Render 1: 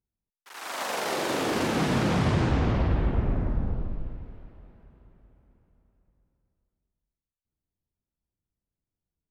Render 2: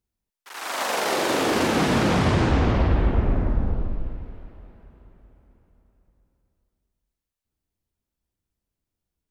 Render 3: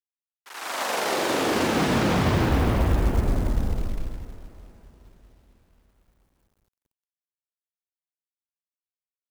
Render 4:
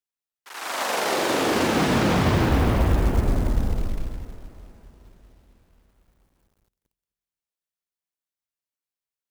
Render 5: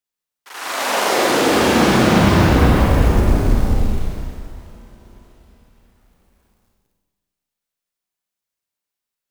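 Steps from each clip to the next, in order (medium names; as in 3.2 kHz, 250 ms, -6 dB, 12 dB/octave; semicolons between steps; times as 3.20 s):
peaking EQ 140 Hz -4.5 dB 0.9 oct; trim +5.5 dB
companded quantiser 6-bit; trim -1.5 dB
bucket-brigade echo 254 ms, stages 1024, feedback 35%, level -22 dB; trim +1.5 dB
Schroeder reverb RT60 1.3 s, combs from 31 ms, DRR -2 dB; trim +3 dB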